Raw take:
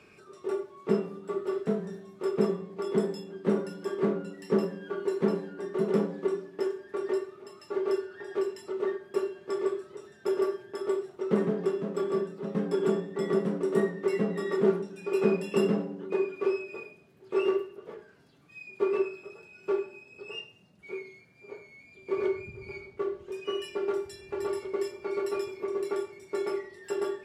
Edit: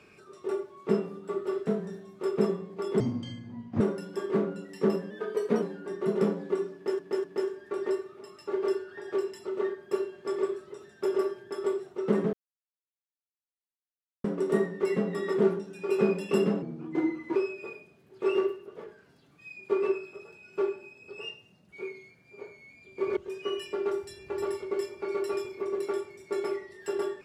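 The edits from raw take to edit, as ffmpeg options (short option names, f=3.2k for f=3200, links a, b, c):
-filter_complex "[0:a]asplit=12[a][b][c][d][e][f][g][h][i][j][k][l];[a]atrim=end=3.004[m];[b]atrim=start=3:end=3.49,asetpts=PTS-STARTPTS,asetrate=26901,aresample=44100[n];[c]atrim=start=3.486:end=4.794[o];[d]atrim=start=4.79:end=5.35,asetpts=PTS-STARTPTS,asetrate=47628,aresample=44100[p];[e]atrim=start=5.346:end=6.722[q];[f]atrim=start=6.468:end=6.722[r];[g]atrim=start=6.468:end=11.56,asetpts=PTS-STARTPTS,afade=t=out:st=5.088:d=0.004:c=hsin[s];[h]atrim=start=11.56:end=13.47,asetpts=PTS-STARTPTS,volume=0[t];[i]atrim=start=13.47:end=15.854,asetpts=PTS-STARTPTS,afade=t=in:d=0.004:c=hsin[u];[j]atrim=start=15.85:end=16.46,asetpts=PTS-STARTPTS,asetrate=36603,aresample=44100[v];[k]atrim=start=16.456:end=22.272[w];[l]atrim=start=23.188[x];[m][n]acrossfade=d=0.004:c1=hsin:c2=hsin[y];[y][o]acrossfade=d=0.004:c1=hsin:c2=hsin[z];[z][p]acrossfade=d=0.004:c1=hsin:c2=hsin[aa];[aa][q]acrossfade=d=0.004:c1=hsin:c2=hsin[ab];[ab][r]acrossfade=d=0.004:c1=hsin:c2=hsin[ac];[s][t][u]concat=n=3:v=0:a=1[ad];[ac][ad]acrossfade=d=0.004:c1=hsin:c2=hsin[ae];[ae][v]acrossfade=d=0.004:c1=hsin:c2=hsin[af];[af][w]acrossfade=d=0.004:c1=hsin:c2=hsin[ag];[ag][x]acrossfade=d=0.004:c1=hsin:c2=hsin"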